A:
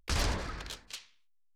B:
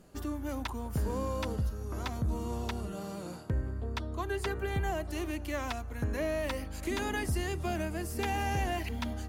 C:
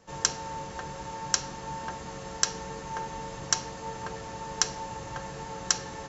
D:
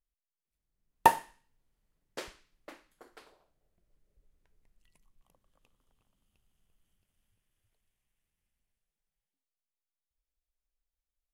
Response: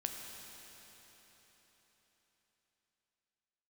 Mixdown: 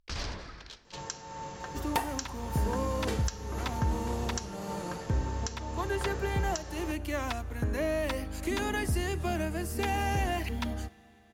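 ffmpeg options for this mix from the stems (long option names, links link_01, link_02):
-filter_complex "[0:a]highshelf=frequency=7600:width_type=q:width=1.5:gain=-12,volume=-7.5dB,asplit=2[link_01][link_02];[link_02]volume=-15.5dB[link_03];[1:a]adelay=1600,volume=1dB,asplit=2[link_04][link_05];[link_05]volume=-16.5dB[link_06];[2:a]adelay=850,volume=-3dB[link_07];[3:a]aecho=1:1:2.6:0.69,aeval=exprs='0.211*(abs(mod(val(0)/0.211+3,4)-2)-1)':channel_layout=same,adelay=900,volume=0.5dB,asplit=2[link_08][link_09];[link_09]volume=-15.5dB[link_10];[4:a]atrim=start_sample=2205[link_11];[link_03][link_06][link_10]amix=inputs=3:normalize=0[link_12];[link_12][link_11]afir=irnorm=-1:irlink=0[link_13];[link_01][link_04][link_07][link_08][link_13]amix=inputs=5:normalize=0,alimiter=limit=-18dB:level=0:latency=1:release=337"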